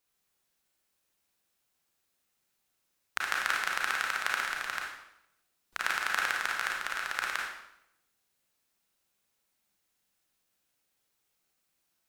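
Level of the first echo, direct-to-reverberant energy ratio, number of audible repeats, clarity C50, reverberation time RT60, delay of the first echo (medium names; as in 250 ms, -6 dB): no echo, -2.0 dB, no echo, 1.5 dB, 0.80 s, no echo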